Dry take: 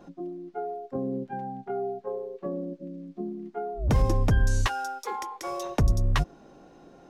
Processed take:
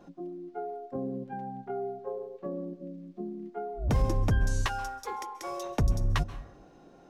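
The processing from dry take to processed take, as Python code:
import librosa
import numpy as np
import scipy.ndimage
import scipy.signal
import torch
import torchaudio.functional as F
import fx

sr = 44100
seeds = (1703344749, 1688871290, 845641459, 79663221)

y = fx.rev_plate(x, sr, seeds[0], rt60_s=0.83, hf_ratio=0.5, predelay_ms=120, drr_db=15.5)
y = F.gain(torch.from_numpy(y), -3.5).numpy()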